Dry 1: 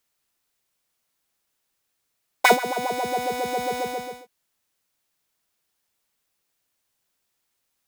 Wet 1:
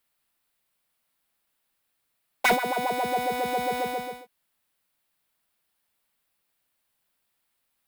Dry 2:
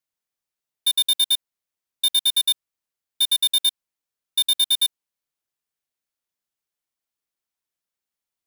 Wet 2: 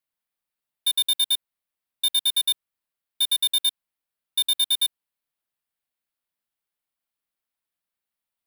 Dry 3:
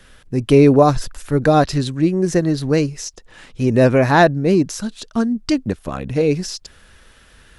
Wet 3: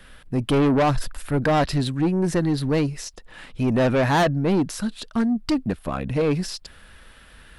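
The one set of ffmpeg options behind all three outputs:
-af "equalizer=f=100:t=o:w=0.67:g=-4,equalizer=f=400:t=o:w=0.67:g=-4,equalizer=f=6.3k:t=o:w=0.67:g=-9,asoftclip=type=tanh:threshold=-16.5dB,volume=1dB"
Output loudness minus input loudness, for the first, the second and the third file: -2.5, -2.5, -5.5 LU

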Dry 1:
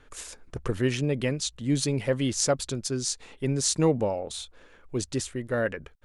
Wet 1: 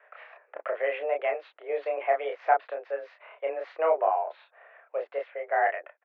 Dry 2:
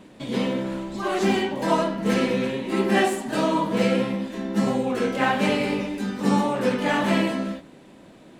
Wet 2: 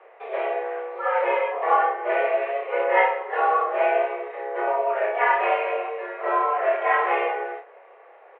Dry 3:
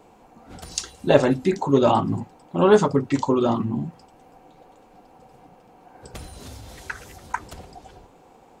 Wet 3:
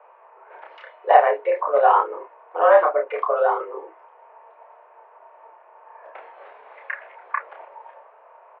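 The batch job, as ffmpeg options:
-filter_complex "[0:a]asplit=2[a][b];[b]adelay=30,volume=-3dB[c];[a][c]amix=inputs=2:normalize=0,highpass=f=350:t=q:w=0.5412,highpass=f=350:t=q:w=1.307,lowpass=f=2.2k:t=q:w=0.5176,lowpass=f=2.2k:t=q:w=0.7071,lowpass=f=2.2k:t=q:w=1.932,afreqshift=160,volume=1.5dB"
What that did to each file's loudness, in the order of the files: -1.5, +0.5, +2.0 LU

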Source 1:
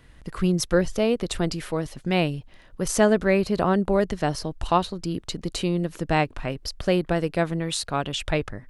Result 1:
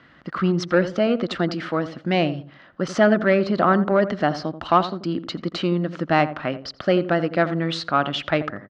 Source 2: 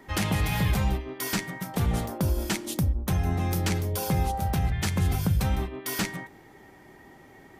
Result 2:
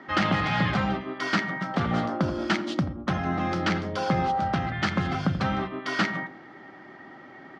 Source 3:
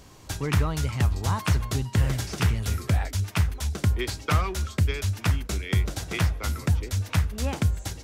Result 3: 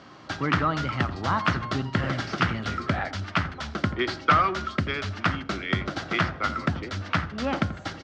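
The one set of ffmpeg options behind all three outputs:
-filter_complex "[0:a]asoftclip=type=tanh:threshold=-12.5dB,highpass=220,equalizer=f=440:t=q:w=4:g=-9,equalizer=f=930:t=q:w=4:g=-5,equalizer=f=1.3k:t=q:w=4:g=6,equalizer=f=2.5k:t=q:w=4:g=-6,equalizer=f=3.7k:t=q:w=4:g=-5,lowpass=f=4.1k:w=0.5412,lowpass=f=4.1k:w=1.3066,asplit=2[a][b];[b]adelay=85,lowpass=f=950:p=1,volume=-11dB,asplit=2[c][d];[d]adelay=85,lowpass=f=950:p=1,volume=0.29,asplit=2[e][f];[f]adelay=85,lowpass=f=950:p=1,volume=0.29[g];[a][c][e][g]amix=inputs=4:normalize=0,volume=7.5dB"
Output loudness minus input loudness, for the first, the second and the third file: +3.0, +1.0, -0.5 LU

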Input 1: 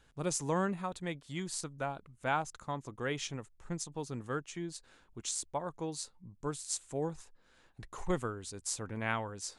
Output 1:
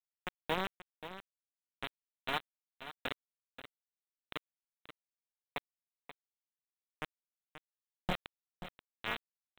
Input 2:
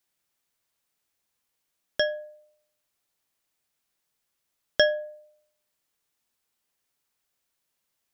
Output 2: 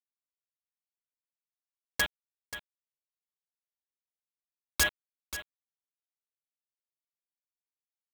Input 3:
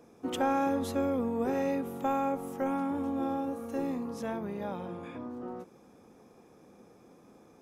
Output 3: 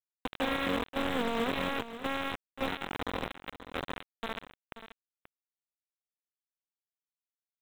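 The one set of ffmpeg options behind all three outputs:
-af "highshelf=f=3k:g=5.5,aecho=1:1:4.2:0.89,aresample=8000,acrusher=bits=3:mix=0:aa=0.000001,aresample=44100,aeval=exprs='(mod(3.55*val(0)+1,2)-1)/3.55':c=same,acrusher=bits=5:mode=log:mix=0:aa=0.000001,aecho=1:1:532:0.237,volume=-6.5dB"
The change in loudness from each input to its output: -5.0, -5.5, -2.0 LU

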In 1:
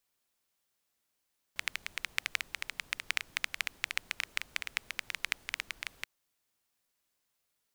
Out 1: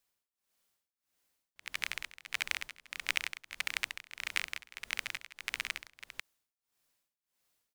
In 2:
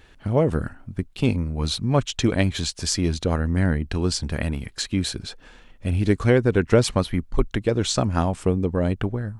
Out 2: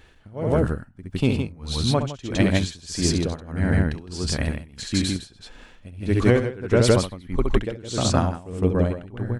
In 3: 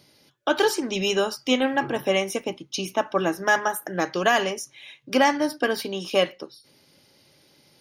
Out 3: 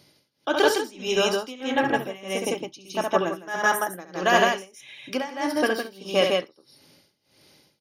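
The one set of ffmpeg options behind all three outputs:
-af "aecho=1:1:67.06|160.3:0.501|0.891,tremolo=f=1.6:d=0.92"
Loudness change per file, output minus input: -1.0, -0.5, -0.5 LU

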